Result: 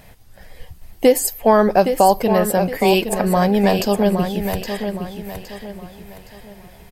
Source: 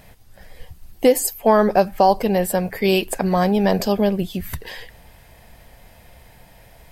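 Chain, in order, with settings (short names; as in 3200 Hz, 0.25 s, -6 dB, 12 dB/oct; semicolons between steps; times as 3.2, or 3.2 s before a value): feedback echo 0.816 s, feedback 36%, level -8 dB; gain +1.5 dB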